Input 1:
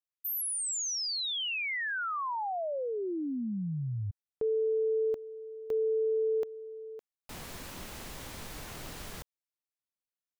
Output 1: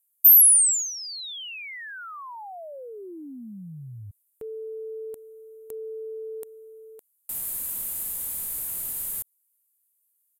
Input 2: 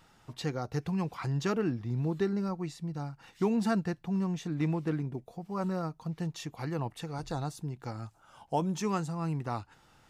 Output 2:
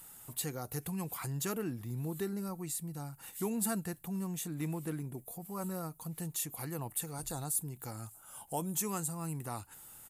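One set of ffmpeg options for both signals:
-filter_complex "[0:a]aexciter=amount=5.4:drive=9.2:freq=7.9k,asplit=2[a][b];[b]acompressor=threshold=-43dB:ratio=6:attack=4:release=29:detection=rms,volume=2dB[c];[a][c]amix=inputs=2:normalize=0,aemphasis=mode=production:type=cd,aresample=32000,aresample=44100,volume=-8.5dB"

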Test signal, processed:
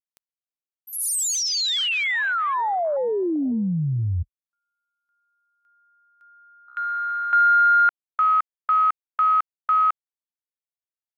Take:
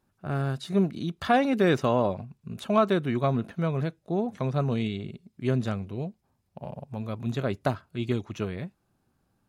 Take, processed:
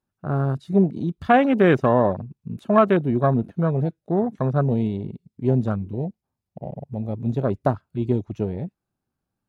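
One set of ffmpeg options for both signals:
-af "afwtdn=0.0224,volume=6dB"

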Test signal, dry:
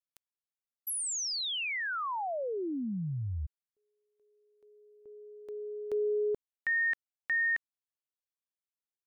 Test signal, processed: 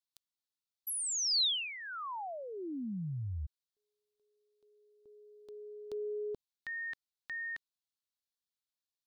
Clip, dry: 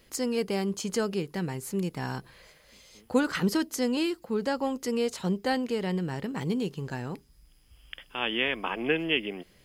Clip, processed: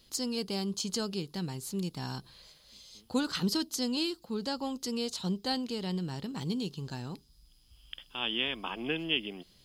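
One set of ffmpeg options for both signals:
-af "equalizer=f=500:t=o:w=1:g=-6,equalizer=f=2k:t=o:w=1:g=-10,equalizer=f=4k:t=o:w=1:g=11,volume=-3dB"

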